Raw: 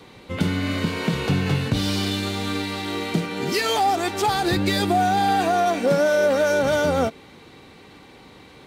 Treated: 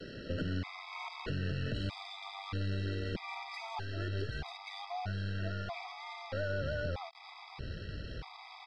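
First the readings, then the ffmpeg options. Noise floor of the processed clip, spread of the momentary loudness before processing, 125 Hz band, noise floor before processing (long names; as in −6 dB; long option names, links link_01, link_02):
−52 dBFS, 7 LU, −10.0 dB, −47 dBFS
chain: -filter_complex "[0:a]lowpass=frequency=1800:poles=1,asubboost=boost=11:cutoff=81,acrossover=split=140|1400[link_01][link_02][link_03];[link_01]acompressor=threshold=-28dB:ratio=4[link_04];[link_02]acompressor=threshold=-33dB:ratio=4[link_05];[link_03]acompressor=threshold=-38dB:ratio=4[link_06];[link_04][link_05][link_06]amix=inputs=3:normalize=0,acrossover=split=210[link_07][link_08];[link_07]alimiter=level_in=2.5dB:limit=-24dB:level=0:latency=1:release=186,volume=-2.5dB[link_09];[link_09][link_08]amix=inputs=2:normalize=0,acompressor=threshold=-33dB:ratio=8,aresample=11025,acrusher=bits=7:mix=0:aa=0.000001,aresample=44100,aeval=exprs='(tanh(39.8*val(0)+0.55)-tanh(0.55))/39.8':channel_layout=same,afftfilt=real='re*gt(sin(2*PI*0.79*pts/sr)*(1-2*mod(floor(b*sr/1024/650),2)),0)':imag='im*gt(sin(2*PI*0.79*pts/sr)*(1-2*mod(floor(b*sr/1024/650),2)),0)':win_size=1024:overlap=0.75,volume=4.5dB"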